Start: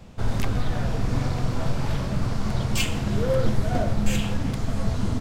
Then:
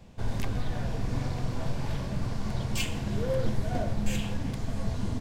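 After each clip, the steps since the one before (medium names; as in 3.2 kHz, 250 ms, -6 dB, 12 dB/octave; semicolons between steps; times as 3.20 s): band-stop 1.3 kHz, Q 8.6; trim -6 dB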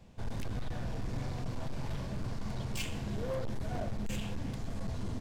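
hard clipper -25.5 dBFS, distortion -11 dB; trim -5 dB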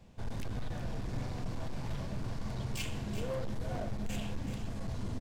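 delay 379 ms -10 dB; trim -1 dB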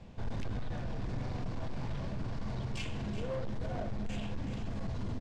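peak limiter -36.5 dBFS, peak gain reduction 7.5 dB; distance through air 91 m; trim +6.5 dB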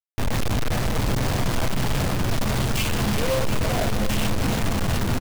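companded quantiser 2-bit; delay 715 ms -11.5 dB; trim +5.5 dB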